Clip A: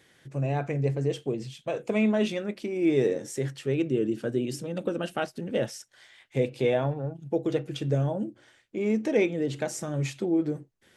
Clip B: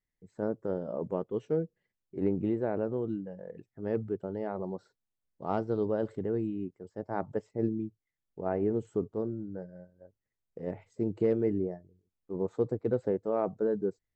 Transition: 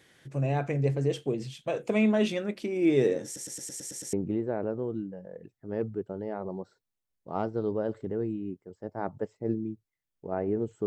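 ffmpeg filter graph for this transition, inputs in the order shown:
ffmpeg -i cue0.wav -i cue1.wav -filter_complex "[0:a]apad=whole_dur=10.86,atrim=end=10.86,asplit=8[link_01][link_02][link_03][link_04][link_05][link_06][link_07][link_08];[link_01]atrim=end=3.362[link_09];[link_02]atrim=start=3.248:end=3.362[link_10];[link_03]atrim=start=3.248:end=3.362[link_11];[link_04]atrim=start=3.248:end=3.362[link_12];[link_05]atrim=start=3.248:end=3.362[link_13];[link_06]atrim=start=3.248:end=3.362[link_14];[link_07]atrim=start=3.248:end=3.362[link_15];[link_08]atrim=start=3.248:end=3.362[link_16];[1:a]atrim=start=2.268:end=9[link_17];[link_09][link_10]acrossfade=duration=0.004:curve1=hsin:curve2=hsin[link_18];[link_18][link_11]acrossfade=duration=0.004:curve1=hsin:curve2=hsin[link_19];[link_19][link_12]acrossfade=duration=0.004:curve1=hsin:curve2=hsin[link_20];[link_20][link_13]acrossfade=duration=0.004:curve1=hsin:curve2=hsin[link_21];[link_21][link_14]acrossfade=duration=0.004:curve1=hsin:curve2=hsin[link_22];[link_22][link_15]acrossfade=duration=0.004:curve1=hsin:curve2=hsin[link_23];[link_23][link_16]acrossfade=duration=0.004:curve1=hsin:curve2=hsin[link_24];[link_24][link_17]acrossfade=duration=0.004:curve1=hsin:curve2=hsin" out.wav

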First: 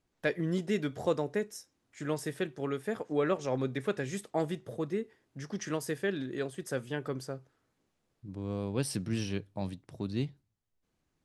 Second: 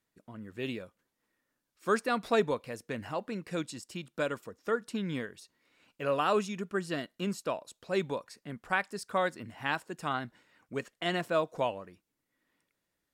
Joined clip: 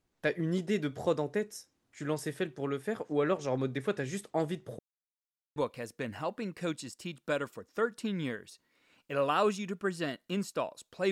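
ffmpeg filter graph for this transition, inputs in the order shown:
ffmpeg -i cue0.wav -i cue1.wav -filter_complex "[0:a]apad=whole_dur=11.11,atrim=end=11.11,asplit=2[link_01][link_02];[link_01]atrim=end=4.79,asetpts=PTS-STARTPTS,afade=type=out:start_time=4.786:duration=0.004:curve=hsin[link_03];[link_02]atrim=start=4.79:end=5.56,asetpts=PTS-STARTPTS,volume=0[link_04];[1:a]atrim=start=2.46:end=8.01,asetpts=PTS-STARTPTS,afade=type=in:duration=0.004:curve=hsin[link_05];[link_03][link_04][link_05]concat=n=3:v=0:a=1" out.wav

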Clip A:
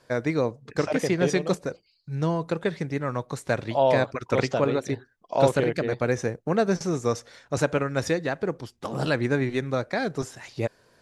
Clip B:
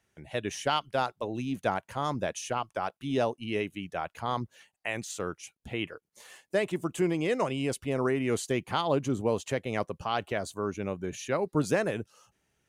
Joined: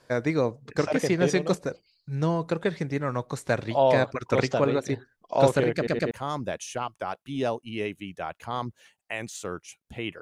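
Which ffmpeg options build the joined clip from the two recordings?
ffmpeg -i cue0.wav -i cue1.wav -filter_complex "[0:a]apad=whole_dur=10.21,atrim=end=10.21,asplit=3[link_01][link_02][link_03];[link_01]atrim=end=5.872[link_04];[link_02]atrim=start=5.748:end=5.872[link_05];[link_03]atrim=start=5.748:end=5.872[link_06];[1:a]atrim=start=1.858:end=5.96[link_07];[link_04][link_05]acrossfade=duration=0.004:curve1=hsin:curve2=hsin[link_08];[link_08][link_06]acrossfade=duration=0.004:curve1=hsin:curve2=hsin[link_09];[link_09][link_07]acrossfade=duration=0.004:curve1=hsin:curve2=hsin" out.wav

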